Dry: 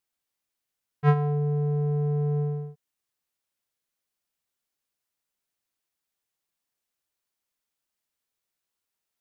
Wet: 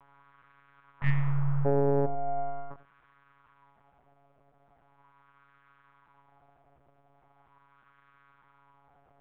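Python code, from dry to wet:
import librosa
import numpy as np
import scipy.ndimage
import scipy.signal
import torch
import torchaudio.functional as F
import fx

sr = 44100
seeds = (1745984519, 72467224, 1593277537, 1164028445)

p1 = fx.bin_compress(x, sr, power=0.6)
p2 = fx.wah_lfo(p1, sr, hz=0.4, low_hz=580.0, high_hz=1400.0, q=2.4)
p3 = fx.lpc_monotone(p2, sr, seeds[0], pitch_hz=140.0, order=8)
p4 = fx.spec_repair(p3, sr, seeds[1], start_s=1.04, length_s=0.59, low_hz=240.0, high_hz=1700.0, source='before')
p5 = fx.rider(p4, sr, range_db=10, speed_s=0.5)
p6 = p4 + F.gain(torch.from_numpy(p5), -0.5).numpy()
p7 = fx.comb_fb(p6, sr, f0_hz=700.0, decay_s=0.15, harmonics='all', damping=0.0, mix_pct=90, at=(2.05, 2.7), fade=0.02)
p8 = p7 + fx.echo_single(p7, sr, ms=92, db=-16.0, dry=0)
p9 = 10.0 ** (-18.0 / 20.0) * np.tanh(p8 / 10.0 ** (-18.0 / 20.0))
p10 = fx.end_taper(p9, sr, db_per_s=240.0)
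y = F.gain(torch.from_numpy(p10), 7.0).numpy()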